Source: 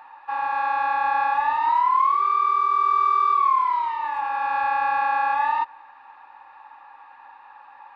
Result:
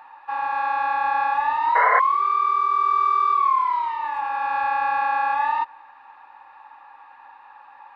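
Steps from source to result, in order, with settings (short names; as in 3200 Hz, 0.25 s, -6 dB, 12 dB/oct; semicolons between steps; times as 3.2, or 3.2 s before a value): painted sound noise, 1.75–2, 430–2200 Hz -20 dBFS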